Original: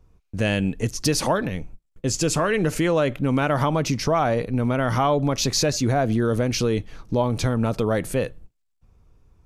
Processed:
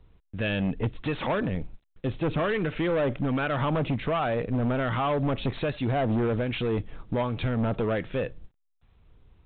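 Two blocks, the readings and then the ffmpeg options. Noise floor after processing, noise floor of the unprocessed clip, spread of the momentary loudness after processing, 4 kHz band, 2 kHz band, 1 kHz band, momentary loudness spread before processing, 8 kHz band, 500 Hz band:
-72 dBFS, -71 dBFS, 6 LU, -10.0 dB, -4.0 dB, -5.5 dB, 6 LU, under -40 dB, -5.0 dB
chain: -filter_complex "[0:a]acrossover=split=1100[a][b];[a]aeval=exprs='val(0)*(1-0.5/2+0.5/2*cos(2*PI*1.3*n/s))':c=same[c];[b]aeval=exprs='val(0)*(1-0.5/2-0.5/2*cos(2*PI*1.3*n/s))':c=same[d];[c][d]amix=inputs=2:normalize=0,volume=22dB,asoftclip=hard,volume=-22dB" -ar 8000 -c:a pcm_alaw

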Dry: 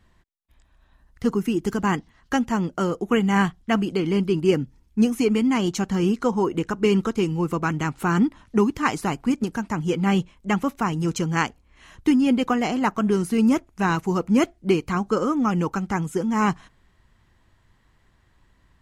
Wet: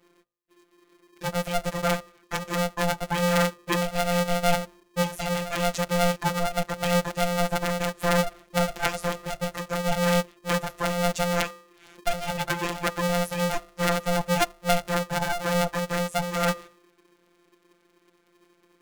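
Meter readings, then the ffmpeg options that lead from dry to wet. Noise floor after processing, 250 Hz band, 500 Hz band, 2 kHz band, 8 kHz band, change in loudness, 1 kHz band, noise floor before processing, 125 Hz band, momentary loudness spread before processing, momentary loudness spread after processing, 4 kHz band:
-65 dBFS, -9.5 dB, -1.5 dB, +0.5 dB, +4.5 dB, -3.5 dB, -0.5 dB, -61 dBFS, -2.5 dB, 6 LU, 6 LU, +4.0 dB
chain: -af "afftfilt=real='hypot(re,im)*cos(PI*b)':imag='0':win_size=1024:overlap=0.75,bandreject=f=108:t=h:w=4,bandreject=f=216:t=h:w=4,bandreject=f=324:t=h:w=4,bandreject=f=432:t=h:w=4,bandreject=f=540:t=h:w=4,bandreject=f=648:t=h:w=4,bandreject=f=756:t=h:w=4,bandreject=f=864:t=h:w=4,bandreject=f=972:t=h:w=4,bandreject=f=1.08k:t=h:w=4,aeval=exprs='val(0)*sgn(sin(2*PI*350*n/s))':c=same"

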